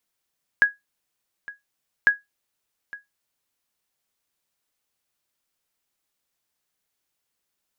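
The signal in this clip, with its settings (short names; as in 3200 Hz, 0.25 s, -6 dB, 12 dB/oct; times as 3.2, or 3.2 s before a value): sonar ping 1660 Hz, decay 0.17 s, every 1.45 s, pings 2, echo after 0.86 s, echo -20.5 dB -7.5 dBFS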